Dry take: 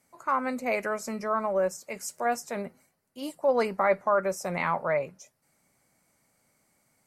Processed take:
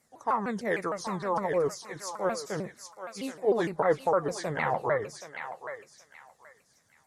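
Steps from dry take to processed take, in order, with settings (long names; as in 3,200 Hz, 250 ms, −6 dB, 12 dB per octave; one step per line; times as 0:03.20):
pitch shifter swept by a sawtooth −5.5 semitones, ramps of 153 ms
feedback echo with a high-pass in the loop 776 ms, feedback 28%, high-pass 1,100 Hz, level −6 dB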